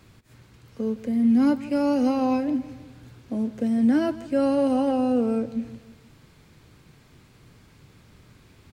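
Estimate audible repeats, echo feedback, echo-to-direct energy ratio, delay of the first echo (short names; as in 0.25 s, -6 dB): 3, 47%, -16.0 dB, 0.161 s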